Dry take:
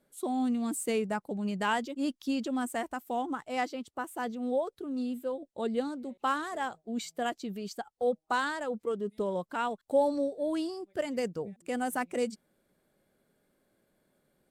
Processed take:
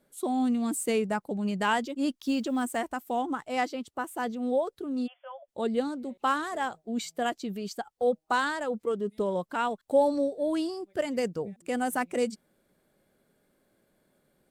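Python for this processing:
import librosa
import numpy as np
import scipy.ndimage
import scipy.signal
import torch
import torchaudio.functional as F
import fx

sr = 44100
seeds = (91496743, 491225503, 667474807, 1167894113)

y = fx.block_float(x, sr, bits=7, at=(2.15, 2.77), fade=0.02)
y = fx.brickwall_bandpass(y, sr, low_hz=540.0, high_hz=3500.0, at=(5.06, 5.47), fade=0.02)
y = F.gain(torch.from_numpy(y), 3.0).numpy()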